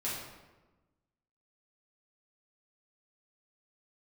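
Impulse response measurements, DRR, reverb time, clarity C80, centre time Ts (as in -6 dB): -8.5 dB, 1.2 s, 4.0 dB, 69 ms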